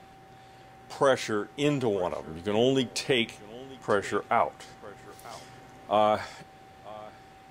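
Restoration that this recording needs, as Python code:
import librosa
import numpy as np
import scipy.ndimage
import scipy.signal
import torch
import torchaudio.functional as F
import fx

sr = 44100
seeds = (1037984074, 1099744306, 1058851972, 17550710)

y = fx.notch(x, sr, hz=770.0, q=30.0)
y = fx.fix_echo_inverse(y, sr, delay_ms=937, level_db=-20.5)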